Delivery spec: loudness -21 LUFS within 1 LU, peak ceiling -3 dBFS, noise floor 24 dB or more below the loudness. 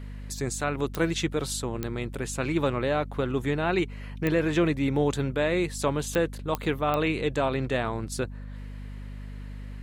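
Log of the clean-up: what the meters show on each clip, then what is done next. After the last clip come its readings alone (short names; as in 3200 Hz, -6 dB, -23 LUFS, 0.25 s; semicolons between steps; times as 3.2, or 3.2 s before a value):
clicks 6; hum 50 Hz; harmonics up to 250 Hz; hum level -36 dBFS; loudness -28.0 LUFS; peak -11.0 dBFS; loudness target -21.0 LUFS
-> de-click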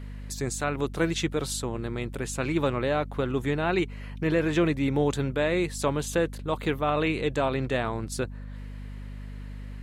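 clicks 0; hum 50 Hz; harmonics up to 250 Hz; hum level -36 dBFS
-> notches 50/100/150/200/250 Hz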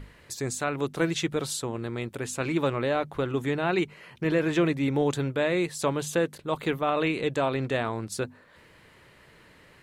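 hum none; loudness -28.0 LUFS; peak -13.0 dBFS; loudness target -21.0 LUFS
-> gain +7 dB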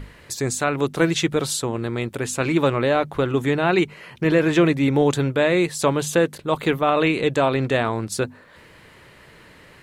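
loudness -21.0 LUFS; peak -6.0 dBFS; noise floor -49 dBFS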